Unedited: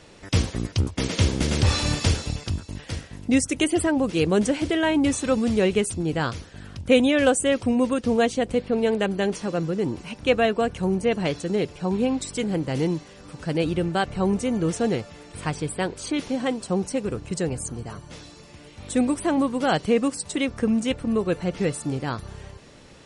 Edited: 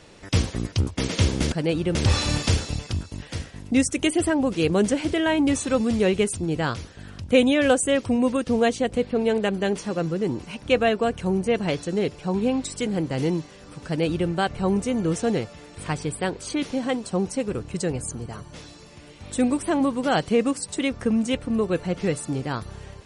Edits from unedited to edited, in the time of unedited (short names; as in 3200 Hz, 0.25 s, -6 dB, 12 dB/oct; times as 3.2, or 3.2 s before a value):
13.43–13.86 copy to 1.52